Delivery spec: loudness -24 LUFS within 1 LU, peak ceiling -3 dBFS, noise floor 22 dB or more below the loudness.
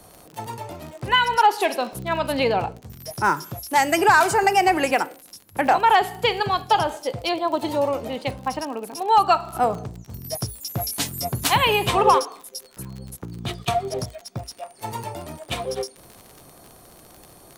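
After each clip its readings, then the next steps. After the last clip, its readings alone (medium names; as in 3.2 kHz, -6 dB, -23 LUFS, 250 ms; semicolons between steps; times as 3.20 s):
tick rate 51 per s; loudness -22.0 LUFS; peak level -4.5 dBFS; loudness target -24.0 LUFS
-> de-click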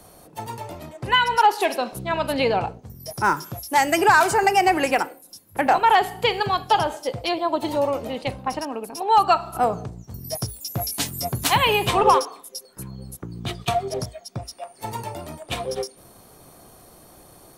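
tick rate 0.11 per s; loudness -22.0 LUFS; peak level -4.5 dBFS; loudness target -24.0 LUFS
-> trim -2 dB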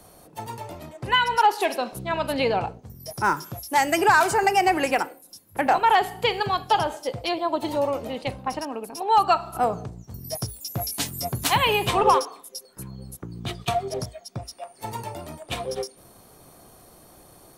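loudness -24.0 LUFS; peak level -6.5 dBFS; noise floor -52 dBFS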